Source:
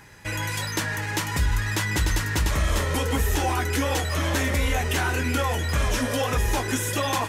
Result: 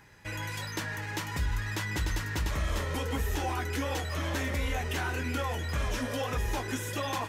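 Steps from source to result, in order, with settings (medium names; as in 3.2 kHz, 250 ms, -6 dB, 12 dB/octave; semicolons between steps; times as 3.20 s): peaking EQ 9.6 kHz -5 dB 1.1 oct; trim -7.5 dB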